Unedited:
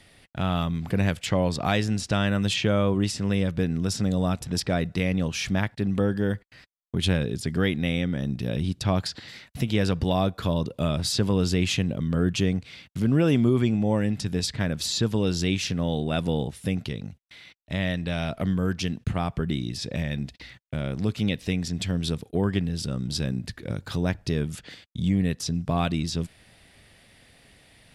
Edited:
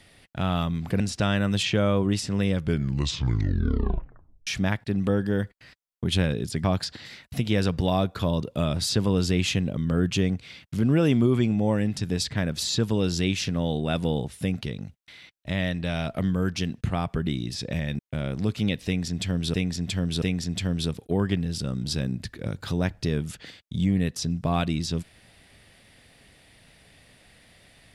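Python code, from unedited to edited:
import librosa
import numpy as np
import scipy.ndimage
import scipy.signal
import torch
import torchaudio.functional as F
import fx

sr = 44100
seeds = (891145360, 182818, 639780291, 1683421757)

y = fx.edit(x, sr, fx.cut(start_s=1.0, length_s=0.91),
    fx.tape_stop(start_s=3.44, length_s=1.94),
    fx.cut(start_s=7.55, length_s=1.32),
    fx.cut(start_s=20.22, length_s=0.37),
    fx.repeat(start_s=21.46, length_s=0.68, count=3), tone=tone)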